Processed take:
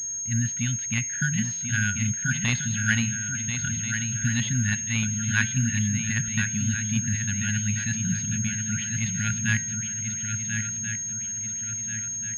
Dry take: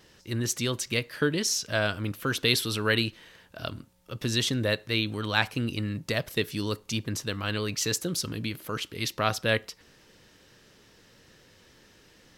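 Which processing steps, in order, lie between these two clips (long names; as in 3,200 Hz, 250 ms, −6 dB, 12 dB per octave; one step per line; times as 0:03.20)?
hum removal 171.9 Hz, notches 16
low-pass that shuts in the quiet parts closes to 2,100 Hz, open at −23 dBFS
high-frequency loss of the air 270 metres
feedback echo with a long and a short gap by turns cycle 1,385 ms, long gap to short 3 to 1, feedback 43%, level −7 dB
surface crackle 570 per second −65 dBFS
linear-phase brick-wall band-stop 250–1,400 Hz
switching amplifier with a slow clock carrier 6,500 Hz
level +6 dB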